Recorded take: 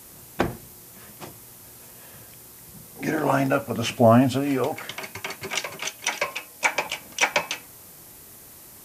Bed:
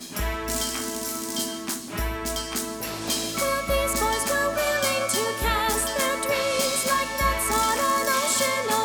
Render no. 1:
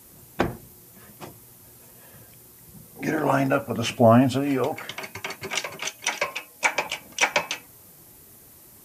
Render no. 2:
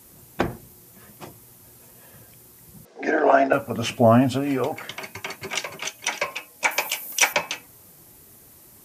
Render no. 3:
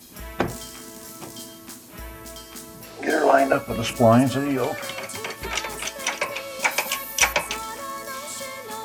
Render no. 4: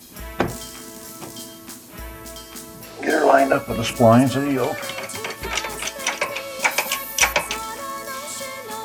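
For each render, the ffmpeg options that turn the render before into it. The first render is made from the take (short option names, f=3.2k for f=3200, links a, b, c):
-af "afftdn=nr=6:nf=-47"
-filter_complex "[0:a]asettb=1/sr,asplit=3[a][b][c];[a]atrim=end=2.854[d];[b]atrim=start=2.85:end=3.53,asetpts=PTS-STARTPTS,afade=t=in:d=0.004:c=qsin,afade=t=out:st=0.676:d=0.004:c=qsin,highpass=f=260:w=0.5412,highpass=f=260:w=1.3066,equalizer=f=420:t=q:w=4:g=7,equalizer=f=670:t=q:w=4:g=10,equalizer=f=1.6k:t=q:w=4:g=7,lowpass=f=5.7k:w=0.5412,lowpass=f=5.7k:w=1.3066[e];[c]atrim=start=3.526[f];[d][e]acrossfade=d=0.004:c1=hsin:c2=qsin[g];[g][f]acrossfade=d=0.004:c1=qsin:c2=hsin,asettb=1/sr,asplit=3[h][i][j];[h]atrim=end=6.714[k];[i]atrim=start=6.71:end=7.33,asetpts=PTS-STARTPTS,afade=t=in:d=0.004:c=qsin,afade=t=out:st=0.616:d=0.004:c=qsin,aemphasis=mode=production:type=bsi[l];[j]atrim=start=7.326[m];[k][l]acrossfade=d=0.004:c1=hsin:c2=qsin[n];[n][m]acrossfade=d=0.004:c1=qsin:c2=hsin"
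-filter_complex "[1:a]volume=-10.5dB[a];[0:a][a]amix=inputs=2:normalize=0"
-af "volume=2.5dB,alimiter=limit=-2dB:level=0:latency=1"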